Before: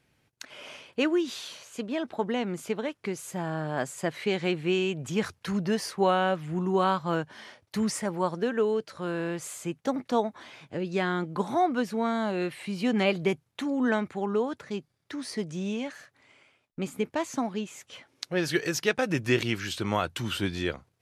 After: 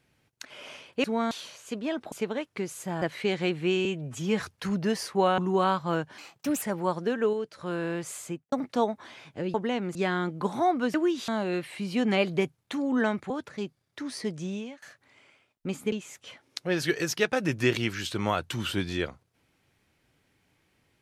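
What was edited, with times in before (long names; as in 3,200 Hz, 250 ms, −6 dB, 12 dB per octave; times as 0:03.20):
0:01.04–0:01.38: swap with 0:11.89–0:12.16
0:02.19–0:02.60: move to 0:10.90
0:03.50–0:04.04: remove
0:04.87–0:05.25: time-stretch 1.5×
0:06.21–0:06.58: remove
0:07.38–0:07.98: play speed 136%
0:08.69–0:08.94: clip gain −4 dB
0:09.60–0:09.88: fade out and dull
0:14.18–0:14.43: remove
0:15.56–0:15.95: fade out, to −20.5 dB
0:17.05–0:17.58: remove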